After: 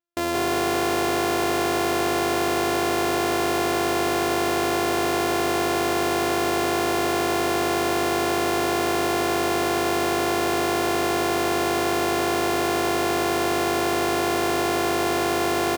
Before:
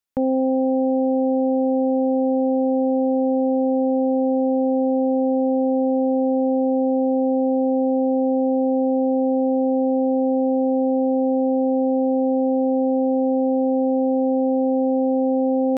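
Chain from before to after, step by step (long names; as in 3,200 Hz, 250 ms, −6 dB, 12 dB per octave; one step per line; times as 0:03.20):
samples sorted by size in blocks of 128 samples
on a send: echo with shifted repeats 175 ms, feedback 53%, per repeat +51 Hz, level −3.5 dB
on the sum: level −5.5 dB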